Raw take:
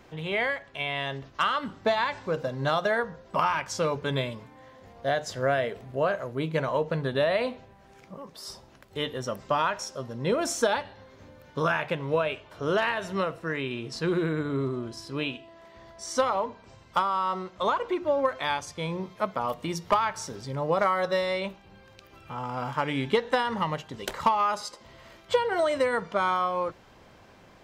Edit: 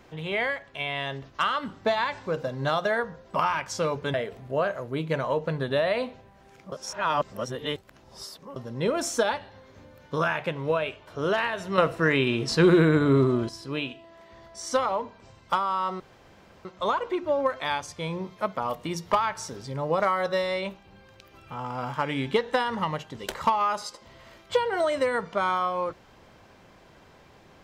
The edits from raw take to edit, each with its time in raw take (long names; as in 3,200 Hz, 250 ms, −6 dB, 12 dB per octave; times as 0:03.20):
0:04.14–0:05.58: remove
0:08.16–0:10.00: reverse
0:13.22–0:14.93: clip gain +8.5 dB
0:17.44: splice in room tone 0.65 s